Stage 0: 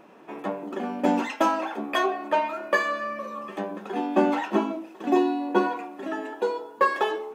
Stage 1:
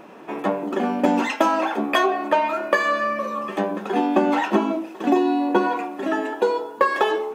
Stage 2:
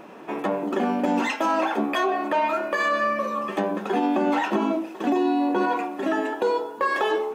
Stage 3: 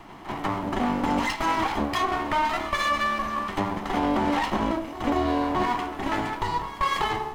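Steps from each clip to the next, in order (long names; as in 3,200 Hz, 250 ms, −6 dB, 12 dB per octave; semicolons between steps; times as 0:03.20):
downward compressor 10 to 1, threshold −22 dBFS, peak gain reduction 8 dB; level +8 dB
brickwall limiter −14 dBFS, peak gain reduction 9.5 dB
lower of the sound and its delayed copy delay 0.97 ms; echo ahead of the sound 193 ms −15.5 dB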